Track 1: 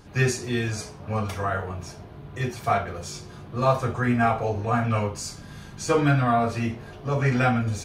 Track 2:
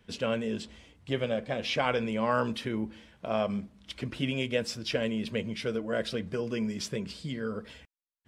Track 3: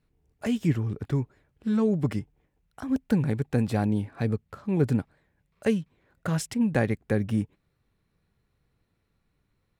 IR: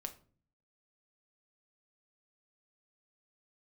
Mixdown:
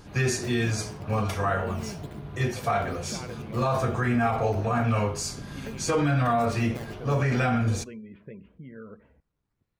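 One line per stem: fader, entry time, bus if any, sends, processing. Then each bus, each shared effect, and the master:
+0.5 dB, 0.00 s, no bus, send -11.5 dB, de-hum 82.45 Hz, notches 28
-6.5 dB, 1.35 s, bus A, send -20.5 dB, spectral gate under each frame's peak -30 dB strong; steep low-pass 2700 Hz 36 dB/oct; low-pass opened by the level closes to 460 Hz, open at -24 dBFS
-8.0 dB, 0.00 s, bus A, no send, decimation with a swept rate 10×, swing 160% 1.2 Hz
bus A: 0.0 dB, compressor 2:1, threshold -42 dBFS, peak gain reduction 9.5 dB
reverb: on, RT60 0.45 s, pre-delay 6 ms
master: limiter -16 dBFS, peak gain reduction 8.5 dB

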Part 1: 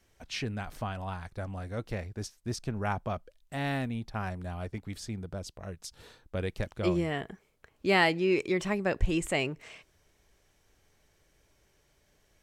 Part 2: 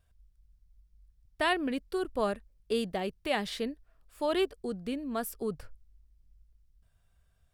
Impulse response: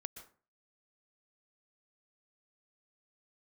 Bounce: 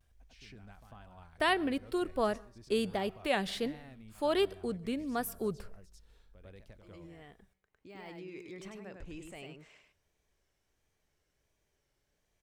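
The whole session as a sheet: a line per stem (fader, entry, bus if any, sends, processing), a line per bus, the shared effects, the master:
-10.0 dB, 0.00 s, send -19.5 dB, echo send -5 dB, de-esser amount 85%; limiter -26 dBFS, peak gain reduction 12 dB; auto duck -16 dB, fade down 0.30 s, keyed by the second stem
+1.0 dB, 0.00 s, send -11 dB, no echo send, dry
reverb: on, RT60 0.40 s, pre-delay 0.112 s
echo: echo 0.1 s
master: vibrato 1.4 Hz 77 cents; resonator 190 Hz, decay 0.97 s, mix 30%

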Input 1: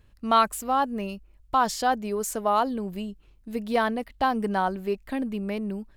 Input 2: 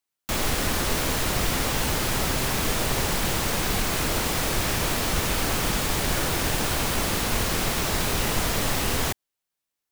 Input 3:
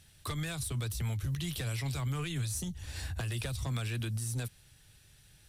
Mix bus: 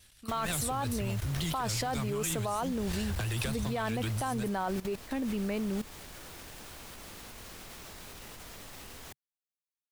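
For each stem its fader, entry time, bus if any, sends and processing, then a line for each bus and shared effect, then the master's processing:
-7.0 dB, 0.00 s, bus A, no send, dry
-15.0 dB, 0.00 s, no bus, no send, dry
-4.5 dB, 0.00 s, bus A, no send, AGC gain up to 10 dB; vibrato 8.6 Hz 96 cents; auto duck -10 dB, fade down 1.10 s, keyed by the first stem
bus A: 0.0 dB, AGC gain up to 12.5 dB; limiter -13 dBFS, peak gain reduction 7.5 dB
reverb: off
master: bell 140 Hz -3 dB 0.34 oct; level quantiser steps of 16 dB; mismatched tape noise reduction encoder only

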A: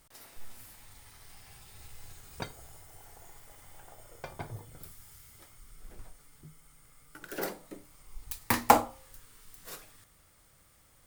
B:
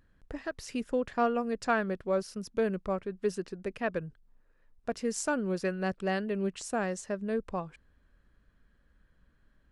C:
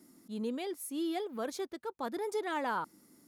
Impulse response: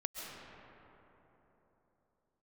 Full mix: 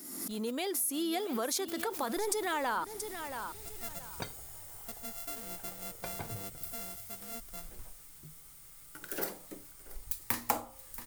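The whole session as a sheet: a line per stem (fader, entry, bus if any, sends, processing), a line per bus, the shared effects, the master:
-1.5 dB, 1.80 s, no send, echo send -22 dB, dry
-17.5 dB, 0.00 s, no send, no echo send, sample sorter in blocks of 64 samples; high shelf 7000 Hz +11.5 dB; requantised 8-bit, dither triangular; auto duck -13 dB, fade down 1.25 s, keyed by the third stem
0.0 dB, 0.00 s, no send, echo send -14 dB, AGC gain up to 8 dB; low shelf 280 Hz -10 dB; backwards sustainer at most 46 dB/s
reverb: off
echo: feedback echo 0.678 s, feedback 24%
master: high shelf 7000 Hz +10.5 dB; compressor 2.5:1, threshold -32 dBFS, peak gain reduction 12.5 dB

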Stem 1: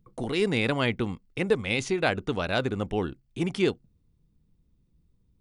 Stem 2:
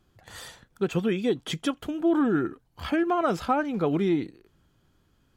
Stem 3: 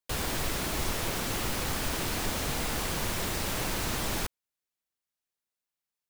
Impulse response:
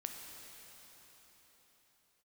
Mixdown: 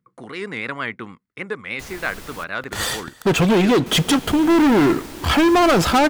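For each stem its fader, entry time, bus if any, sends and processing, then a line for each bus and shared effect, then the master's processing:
-5.5 dB, 0.00 s, no send, band shelf 1500 Hz +10.5 dB 1.3 oct; vibrato 6.5 Hz 61 cents; HPF 140 Hz
-0.5 dB, 2.45 s, send -12.5 dB, sample leveller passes 5
-7.5 dB, 1.70 s, muted 2.44–3.86, send -19.5 dB, dry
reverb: on, pre-delay 6 ms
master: dry

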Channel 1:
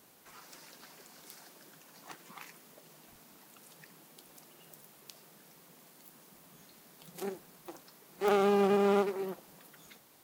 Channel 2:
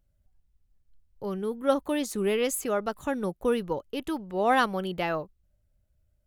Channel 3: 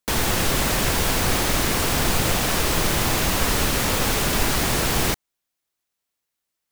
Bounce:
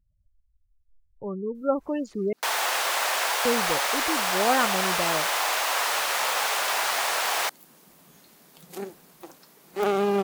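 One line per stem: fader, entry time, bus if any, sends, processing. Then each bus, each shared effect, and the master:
+3.0 dB, 1.55 s, no send, auto duck -18 dB, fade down 1.55 s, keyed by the second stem
0.0 dB, 0.00 s, muted 2.33–3.45, no send, Wiener smoothing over 9 samples; low-pass opened by the level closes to 990 Hz, open at -21 dBFS; spectral gate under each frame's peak -20 dB strong
+1.5 dB, 2.35 s, no send, HPF 690 Hz 24 dB/oct; tilt -2 dB/oct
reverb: off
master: dry

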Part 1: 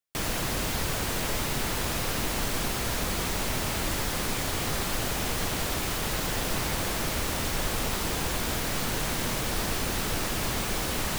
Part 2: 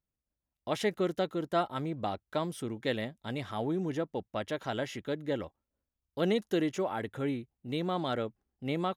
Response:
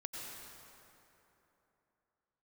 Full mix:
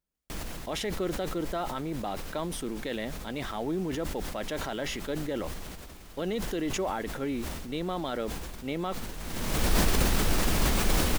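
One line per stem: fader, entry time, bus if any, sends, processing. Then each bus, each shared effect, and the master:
-1.5 dB, 0.15 s, no send, low shelf 230 Hz +10 dB; auto duck -22 dB, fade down 0.55 s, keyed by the second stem
+1.5 dB, 0.00 s, no send, limiter -24.5 dBFS, peak gain reduction 8 dB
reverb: off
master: bell 110 Hz -11.5 dB 0.57 oct; sustainer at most 27 dB/s

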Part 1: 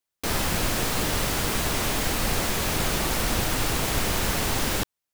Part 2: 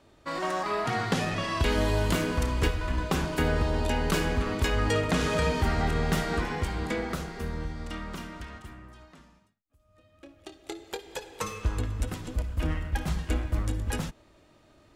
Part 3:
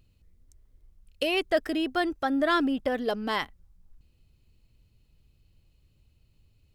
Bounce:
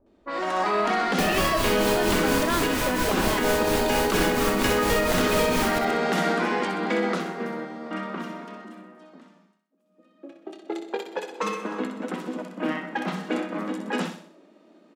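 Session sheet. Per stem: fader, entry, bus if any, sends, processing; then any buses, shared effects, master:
-9.0 dB, 0.95 s, no bus, no send, echo send -7 dB, beating tremolo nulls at 4.3 Hz
+1.0 dB, 0.00 s, bus A, no send, echo send -9.5 dB, steep high-pass 180 Hz 96 dB/oct; high shelf 6100 Hz -9 dB
-8.5 dB, 0.00 s, bus A, no send, no echo send, dry
bus A: 0.0 dB, low-pass opened by the level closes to 450 Hz, open at -26.5 dBFS; limiter -22 dBFS, peak gain reduction 9 dB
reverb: off
echo: feedback echo 63 ms, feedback 43%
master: AGC gain up to 7 dB

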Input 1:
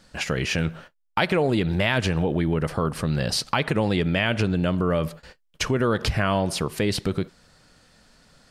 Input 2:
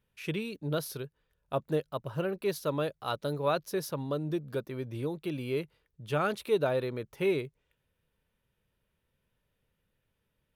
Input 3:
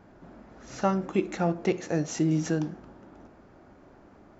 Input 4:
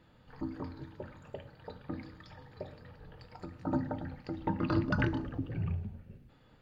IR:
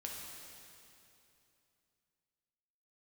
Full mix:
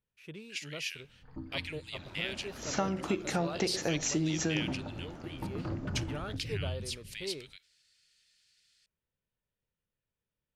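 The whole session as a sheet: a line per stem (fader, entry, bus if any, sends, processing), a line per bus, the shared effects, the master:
-7.5 dB, 0.35 s, no send, inverse Chebyshev high-pass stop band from 670 Hz, stop band 60 dB
-12.5 dB, 0.00 s, no send, dry
+0.5 dB, 1.95 s, no send, high shelf 2900 Hz +11 dB; compressor, threshold -28 dBFS, peak gain reduction 9.5 dB
-8.5 dB, 0.95 s, no send, low shelf 170 Hz +10 dB; hard clip -23 dBFS, distortion -12 dB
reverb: off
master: high shelf 11000 Hz -8.5 dB

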